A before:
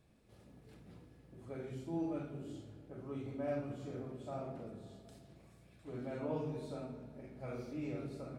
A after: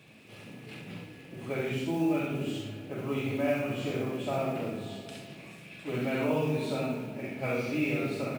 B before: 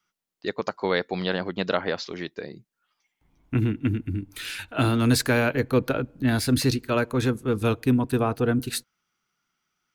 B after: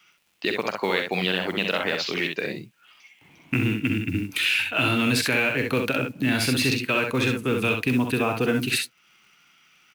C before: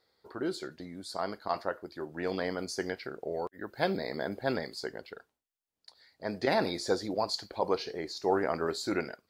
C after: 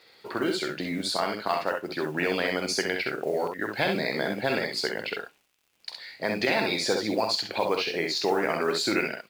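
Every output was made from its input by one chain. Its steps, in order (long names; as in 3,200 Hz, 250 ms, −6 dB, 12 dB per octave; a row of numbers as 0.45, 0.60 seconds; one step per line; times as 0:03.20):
high-pass filter 110 Hz 24 dB per octave
parametric band 2,600 Hz +14.5 dB 0.78 octaves
in parallel at +2 dB: brickwall limiter −14 dBFS
on the sum: downward compressor 2.5 to 1, threshold −33 dBFS
noise that follows the level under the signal 28 dB
surface crackle 88 per second −56 dBFS
on a send: ambience of single reflections 46 ms −10 dB, 65 ms −5 dB
on the sum: level +5 dB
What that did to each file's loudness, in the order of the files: +11.5, +1.5, +6.0 LU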